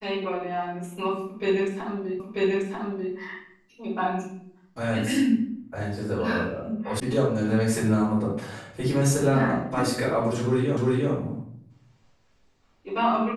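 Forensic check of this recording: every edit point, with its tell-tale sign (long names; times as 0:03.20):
0:02.20: the same again, the last 0.94 s
0:07.00: cut off before it has died away
0:10.77: the same again, the last 0.35 s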